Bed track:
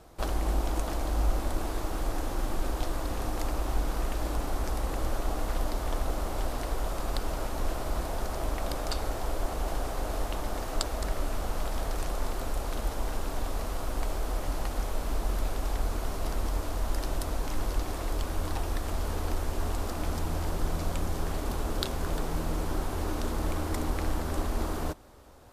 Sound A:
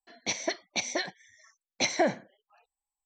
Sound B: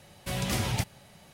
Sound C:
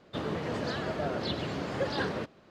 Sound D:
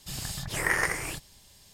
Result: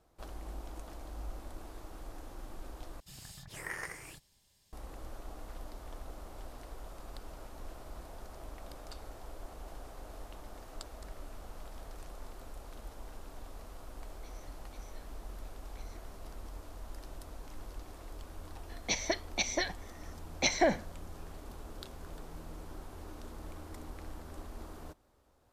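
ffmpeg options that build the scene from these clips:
ffmpeg -i bed.wav -i cue0.wav -i cue1.wav -i cue2.wav -i cue3.wav -filter_complex "[1:a]asplit=2[link_01][link_02];[0:a]volume=-15.5dB[link_03];[link_01]acompressor=threshold=-40dB:ratio=6:attack=3.2:release=140:knee=1:detection=peak[link_04];[link_03]asplit=2[link_05][link_06];[link_05]atrim=end=3.004[link_07];[4:a]atrim=end=1.73,asetpts=PTS-STARTPTS,volume=-14.5dB[link_08];[link_06]atrim=start=4.726[link_09];[link_04]atrim=end=3.05,asetpts=PTS-STARTPTS,volume=-18dB,afade=type=in:duration=0.004:curve=hsin,afade=type=out:start_time=3.046:duration=0.004:curve=hsin,adelay=13970[link_10];[link_02]atrim=end=3.05,asetpts=PTS-STARTPTS,volume=-1.5dB,afade=type=in:duration=0.004:curve=hsin,afade=type=out:start_time=3.046:duration=0.004:curve=hsin,adelay=18620[link_11];[link_07][link_08]acrossfade=duration=0.004:curve1=hsin:curve2=hsin[link_12];[link_12][link_09]acrossfade=duration=0.004:curve1=hsin:curve2=hsin[link_13];[link_13][link_10][link_11]amix=inputs=3:normalize=0" out.wav

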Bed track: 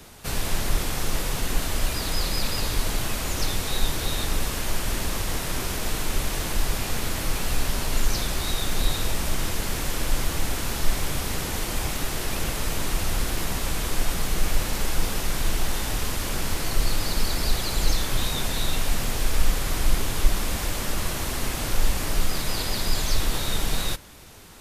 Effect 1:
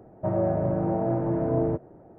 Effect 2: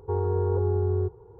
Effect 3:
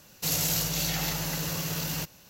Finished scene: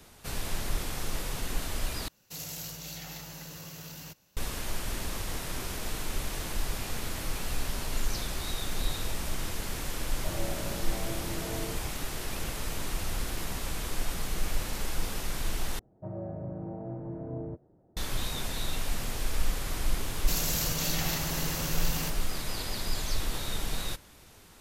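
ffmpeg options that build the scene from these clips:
ffmpeg -i bed.wav -i cue0.wav -i cue1.wav -i cue2.wav -filter_complex "[3:a]asplit=2[link_01][link_02];[1:a]asplit=2[link_03][link_04];[0:a]volume=-7.5dB[link_05];[link_04]lowshelf=frequency=300:gain=9[link_06];[link_02]alimiter=limit=-18dB:level=0:latency=1:release=71[link_07];[link_05]asplit=3[link_08][link_09][link_10];[link_08]atrim=end=2.084[link_11];[link_01]atrim=end=2.29,asetpts=PTS-STARTPTS,volume=-12.5dB[link_12];[link_09]atrim=start=4.366:end=15.794[link_13];[link_06]atrim=end=2.18,asetpts=PTS-STARTPTS,volume=-17.5dB[link_14];[link_10]atrim=start=17.966[link_15];[link_03]atrim=end=2.18,asetpts=PTS-STARTPTS,volume=-14dB,afade=type=in:duration=0.004:curve=hsin,afade=type=out:start_time=2.176:duration=0.004:curve=hsin,adelay=10010[link_16];[link_07]atrim=end=2.29,asetpts=PTS-STARTPTS,volume=-2.5dB,afade=type=in:duration=0.004:curve=hsin,afade=type=out:start_time=2.286:duration=0.004:curve=hsin,adelay=20050[link_17];[link_11][link_12]acrossfade=duration=0.004:curve1=hsin:curve2=hsin[link_18];[link_18][link_13]acrossfade=duration=0.004:curve1=hsin:curve2=hsin[link_19];[link_19][link_14]acrossfade=duration=0.004:curve1=hsin:curve2=hsin[link_20];[link_20][link_15]acrossfade=duration=0.004:curve1=hsin:curve2=hsin[link_21];[link_21][link_16][link_17]amix=inputs=3:normalize=0" out.wav

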